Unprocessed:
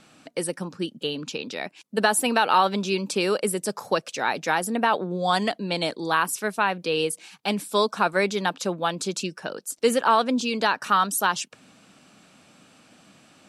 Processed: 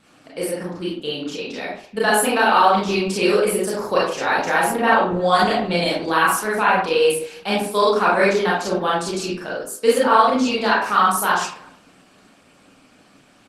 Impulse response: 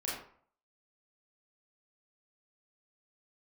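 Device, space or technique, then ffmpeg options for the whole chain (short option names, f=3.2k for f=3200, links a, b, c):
speakerphone in a meeting room: -filter_complex "[1:a]atrim=start_sample=2205[a];[0:a][a]afir=irnorm=-1:irlink=0,asplit=2[b][c];[c]adelay=320,highpass=300,lowpass=3.4k,asoftclip=type=hard:threshold=-11.5dB,volume=-27dB[d];[b][d]amix=inputs=2:normalize=0,dynaudnorm=f=310:g=13:m=4.5dB,volume=1dB" -ar 48000 -c:a libopus -b:a 20k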